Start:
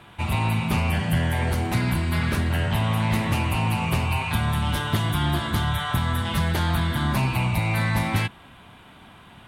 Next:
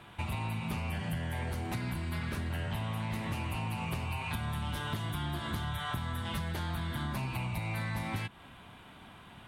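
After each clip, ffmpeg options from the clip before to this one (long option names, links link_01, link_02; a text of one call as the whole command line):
ffmpeg -i in.wav -af "acompressor=threshold=-28dB:ratio=6,volume=-4.5dB" out.wav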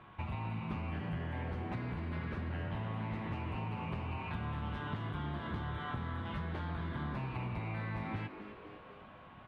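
ffmpeg -i in.wav -filter_complex "[0:a]lowpass=2200,aeval=exprs='val(0)+0.00158*sin(2*PI*1100*n/s)':channel_layout=same,asplit=2[link_01][link_02];[link_02]asplit=7[link_03][link_04][link_05][link_06][link_07][link_08][link_09];[link_03]adelay=251,afreqshift=100,volume=-12dB[link_10];[link_04]adelay=502,afreqshift=200,volume=-16.2dB[link_11];[link_05]adelay=753,afreqshift=300,volume=-20.3dB[link_12];[link_06]adelay=1004,afreqshift=400,volume=-24.5dB[link_13];[link_07]adelay=1255,afreqshift=500,volume=-28.6dB[link_14];[link_08]adelay=1506,afreqshift=600,volume=-32.8dB[link_15];[link_09]adelay=1757,afreqshift=700,volume=-36.9dB[link_16];[link_10][link_11][link_12][link_13][link_14][link_15][link_16]amix=inputs=7:normalize=0[link_17];[link_01][link_17]amix=inputs=2:normalize=0,volume=-3.5dB" out.wav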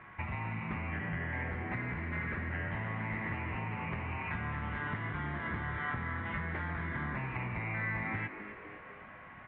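ffmpeg -i in.wav -af "lowpass=frequency=2000:width_type=q:width=5.1" out.wav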